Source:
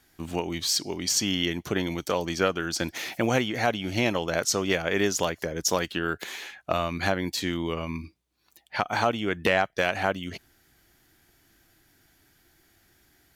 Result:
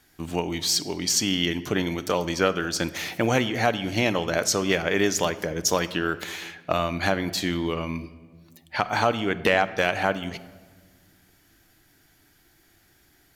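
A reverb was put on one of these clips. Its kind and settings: simulated room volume 1400 m³, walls mixed, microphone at 0.41 m; trim +2 dB

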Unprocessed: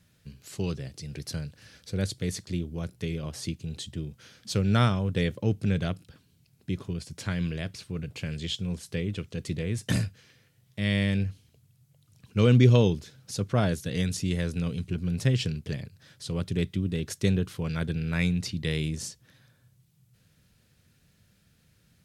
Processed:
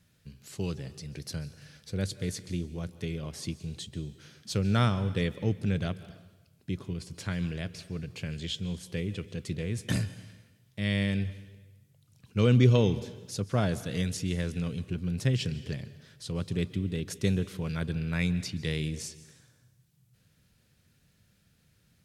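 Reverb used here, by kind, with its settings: plate-style reverb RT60 1.1 s, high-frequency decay 1×, pre-delay 120 ms, DRR 15.5 dB; trim -2.5 dB

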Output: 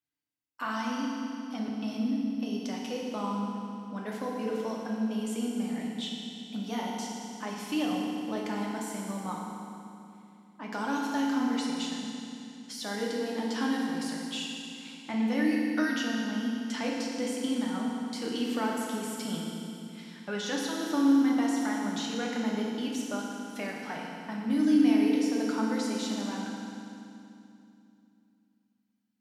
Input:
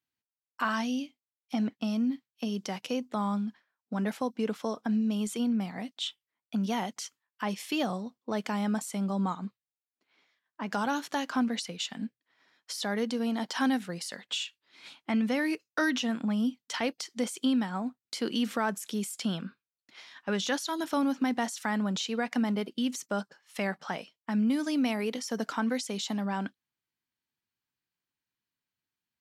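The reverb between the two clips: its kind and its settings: FDN reverb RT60 2.7 s, low-frequency decay 1.4×, high-frequency decay 0.95×, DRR -3 dB; trim -6 dB

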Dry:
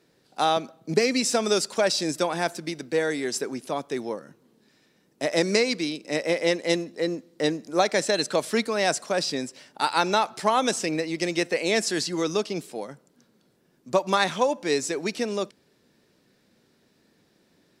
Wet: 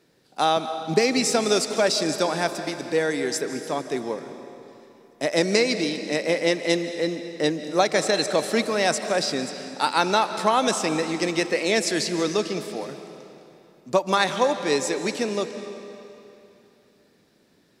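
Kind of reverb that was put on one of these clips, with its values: algorithmic reverb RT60 2.9 s, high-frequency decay 0.9×, pre-delay 110 ms, DRR 9 dB; trim +1.5 dB

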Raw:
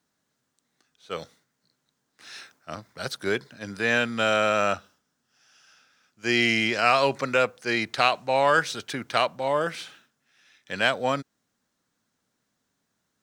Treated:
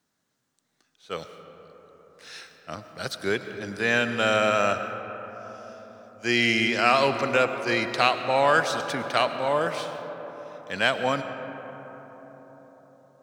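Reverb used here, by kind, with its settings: algorithmic reverb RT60 4.9 s, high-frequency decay 0.3×, pre-delay 65 ms, DRR 8.5 dB

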